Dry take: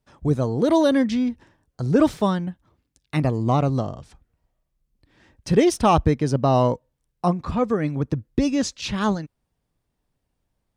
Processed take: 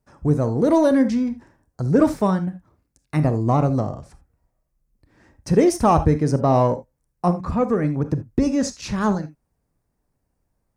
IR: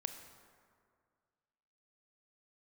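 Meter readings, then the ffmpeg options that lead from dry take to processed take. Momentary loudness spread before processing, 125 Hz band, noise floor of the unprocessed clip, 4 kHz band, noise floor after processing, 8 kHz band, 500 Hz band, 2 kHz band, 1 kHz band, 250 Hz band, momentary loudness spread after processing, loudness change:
12 LU, +2.0 dB, −77 dBFS, −5.5 dB, −75 dBFS, +0.5 dB, +1.5 dB, −1.5 dB, +1.0 dB, +1.5 dB, 10 LU, +1.5 dB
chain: -filter_complex "[0:a]equalizer=frequency=3300:width=1.6:gain=-12.5[link_01];[1:a]atrim=start_sample=2205,atrim=end_sample=3969[link_02];[link_01][link_02]afir=irnorm=-1:irlink=0,asplit=2[link_03][link_04];[link_04]asoftclip=type=tanh:threshold=-23.5dB,volume=-11dB[link_05];[link_03][link_05]amix=inputs=2:normalize=0,volume=2.5dB"

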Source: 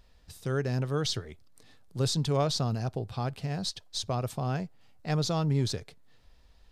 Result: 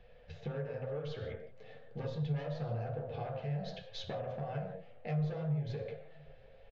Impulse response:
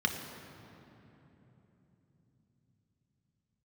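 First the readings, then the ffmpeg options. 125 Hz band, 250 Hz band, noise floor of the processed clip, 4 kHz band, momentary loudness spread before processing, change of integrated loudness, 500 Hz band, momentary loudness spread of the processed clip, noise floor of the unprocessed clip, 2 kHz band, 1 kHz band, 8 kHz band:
−7.0 dB, −8.5 dB, −57 dBFS, −16.5 dB, 11 LU, −8.5 dB, −6.0 dB, 14 LU, −59 dBFS, −8.0 dB, −9.5 dB, below −25 dB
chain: -filter_complex "[0:a]firequalizer=gain_entry='entry(140,0);entry(320,-20);entry(530,14);entry(950,-7);entry(1600,1);entry(3700,-11);entry(5300,-26)':delay=0.05:min_phase=1,asoftclip=type=tanh:threshold=-21dB,flanger=delay=1:depth=9.8:regen=-58:speed=1.6:shape=triangular,acompressor=threshold=-48dB:ratio=2,asplit=2[link_01][link_02];[link_02]adelay=699.7,volume=-28dB,highshelf=frequency=4000:gain=-15.7[link_03];[link_01][link_03]amix=inputs=2:normalize=0[link_04];[1:a]atrim=start_sample=2205,afade=type=out:start_time=0.38:duration=0.01,atrim=end_sample=17199,asetrate=79380,aresample=44100[link_05];[link_04][link_05]afir=irnorm=-1:irlink=0,aresample=16000,aresample=44100,acrossover=split=120[link_06][link_07];[link_07]acompressor=threshold=-45dB:ratio=10[link_08];[link_06][link_08]amix=inputs=2:normalize=0,flanger=delay=8.2:depth=1.2:regen=-38:speed=0.38:shape=sinusoidal,volume=12dB"

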